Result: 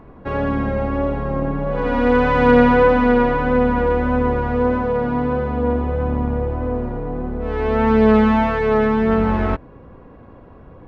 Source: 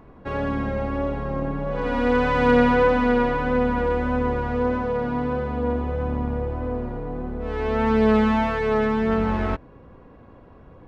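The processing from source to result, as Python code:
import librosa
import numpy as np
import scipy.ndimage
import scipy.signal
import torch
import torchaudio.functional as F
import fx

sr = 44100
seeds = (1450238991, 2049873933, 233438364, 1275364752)

y = fx.high_shelf(x, sr, hz=4000.0, db=-9.0)
y = y * librosa.db_to_amplitude(5.0)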